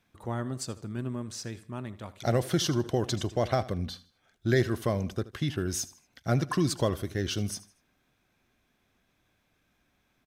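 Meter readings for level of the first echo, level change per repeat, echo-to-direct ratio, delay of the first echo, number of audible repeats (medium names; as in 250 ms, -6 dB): -18.0 dB, -9.0 dB, -17.5 dB, 78 ms, 2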